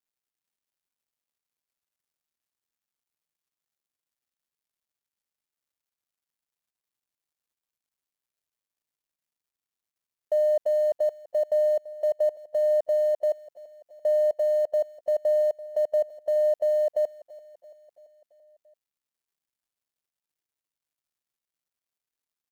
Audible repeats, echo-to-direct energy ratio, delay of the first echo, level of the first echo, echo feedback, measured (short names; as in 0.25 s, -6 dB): 4, -16.0 dB, 0.337 s, -18.0 dB, 60%